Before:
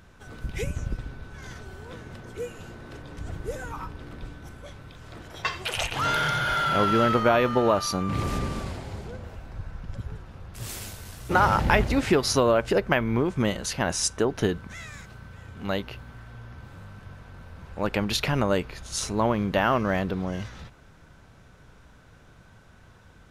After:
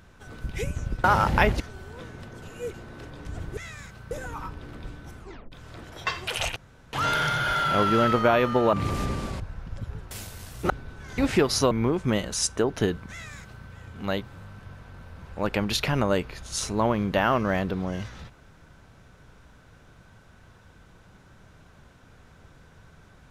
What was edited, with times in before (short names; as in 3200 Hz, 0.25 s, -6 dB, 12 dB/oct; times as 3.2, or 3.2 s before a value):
1.04–1.52 swap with 11.36–11.92
2.34–2.66 reverse
4.56 tape stop 0.34 s
5.94 insert room tone 0.37 s
7.74–8.06 cut
8.73–9.57 cut
10.28–10.77 cut
12.45–13.03 cut
13.68–13.97 cut
14.72–15.26 copy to 3.49
15.84–16.63 cut